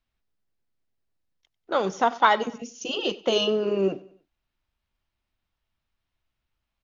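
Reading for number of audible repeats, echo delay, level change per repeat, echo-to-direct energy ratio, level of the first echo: 2, 95 ms, −7.5 dB, −19.0 dB, −20.0 dB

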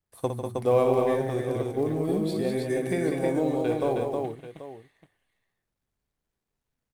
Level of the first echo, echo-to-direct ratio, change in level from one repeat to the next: −7.5 dB, 0.0 dB, repeats not evenly spaced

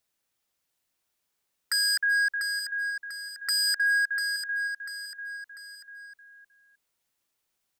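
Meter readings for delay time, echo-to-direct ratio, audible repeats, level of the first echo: 694 ms, −7.5 dB, 3, −8.5 dB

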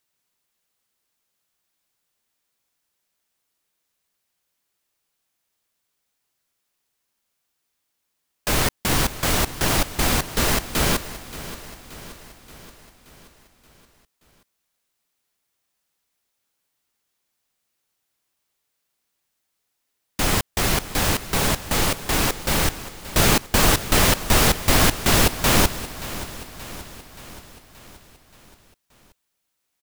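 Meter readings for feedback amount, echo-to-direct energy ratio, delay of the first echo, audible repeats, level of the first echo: 57%, −13.5 dB, 577 ms, 5, −15.0 dB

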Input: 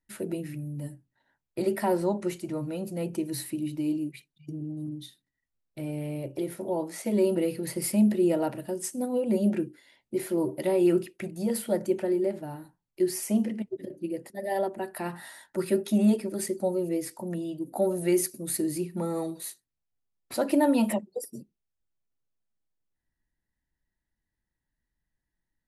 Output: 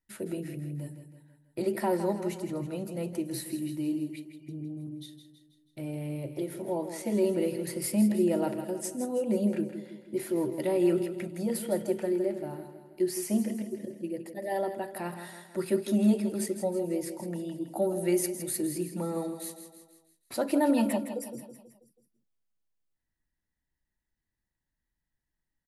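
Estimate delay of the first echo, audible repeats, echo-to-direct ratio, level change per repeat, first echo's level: 162 ms, 5, −9.0 dB, −6.0 dB, −10.0 dB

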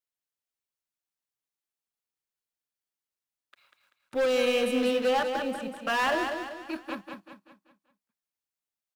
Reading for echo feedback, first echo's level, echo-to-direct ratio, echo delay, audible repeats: 43%, −6.0 dB, −5.0 dB, 193 ms, 4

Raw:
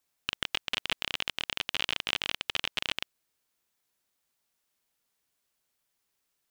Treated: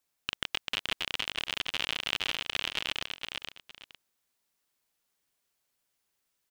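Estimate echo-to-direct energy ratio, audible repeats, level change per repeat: −5.0 dB, 2, −13.0 dB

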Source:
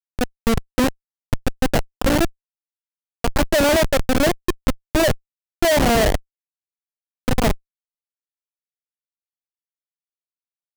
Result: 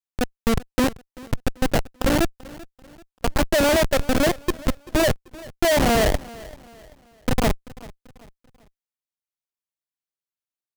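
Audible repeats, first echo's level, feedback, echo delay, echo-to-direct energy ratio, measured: 2, −20.5 dB, 40%, 388 ms, −20.0 dB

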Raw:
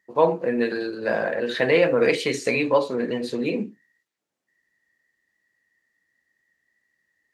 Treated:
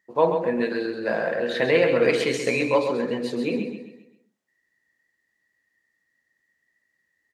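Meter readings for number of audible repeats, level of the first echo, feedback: 4, −7.0 dB, 40%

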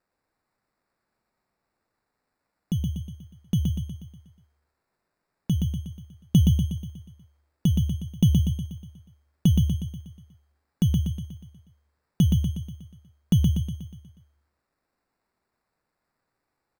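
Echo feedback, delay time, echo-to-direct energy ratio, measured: 52%, 121 ms, −2.0 dB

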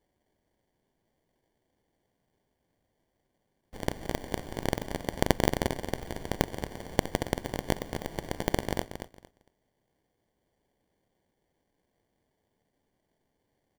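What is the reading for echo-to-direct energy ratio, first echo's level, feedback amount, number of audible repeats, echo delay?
−9.0 dB, −9.0 dB, 21%, 2, 228 ms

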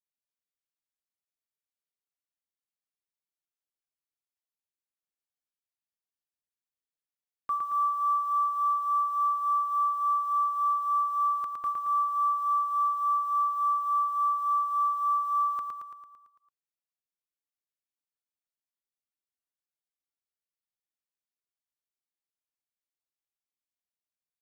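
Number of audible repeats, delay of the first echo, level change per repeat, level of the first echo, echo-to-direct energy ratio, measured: 7, 112 ms, −4.5 dB, −4.0 dB, −2.0 dB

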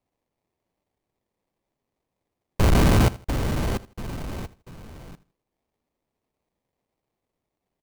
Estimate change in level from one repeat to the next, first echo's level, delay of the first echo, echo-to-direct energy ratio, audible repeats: −11.5 dB, −19.0 dB, 80 ms, −18.5 dB, 2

